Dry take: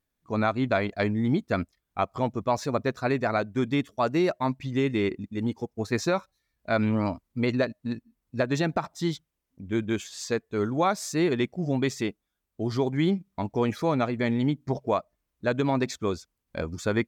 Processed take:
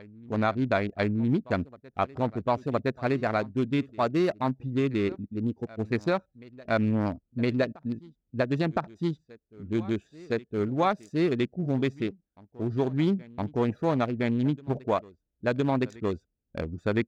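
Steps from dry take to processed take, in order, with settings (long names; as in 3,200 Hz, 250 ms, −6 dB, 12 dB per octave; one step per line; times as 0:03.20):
adaptive Wiener filter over 41 samples
backwards echo 1,014 ms −22 dB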